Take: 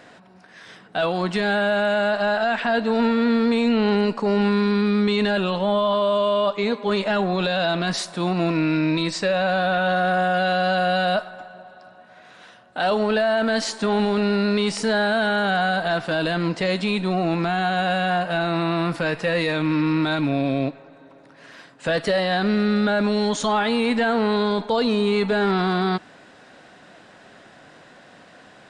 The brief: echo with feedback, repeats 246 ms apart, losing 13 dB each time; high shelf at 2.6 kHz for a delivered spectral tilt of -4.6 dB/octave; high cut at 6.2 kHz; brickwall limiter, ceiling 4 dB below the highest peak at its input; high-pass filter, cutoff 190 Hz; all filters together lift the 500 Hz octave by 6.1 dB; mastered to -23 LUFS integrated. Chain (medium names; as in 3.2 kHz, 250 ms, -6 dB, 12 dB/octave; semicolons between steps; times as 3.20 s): high-pass 190 Hz; low-pass 6.2 kHz; peaking EQ 500 Hz +8.5 dB; treble shelf 2.6 kHz -8.5 dB; peak limiter -10.5 dBFS; feedback delay 246 ms, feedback 22%, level -13 dB; trim -4 dB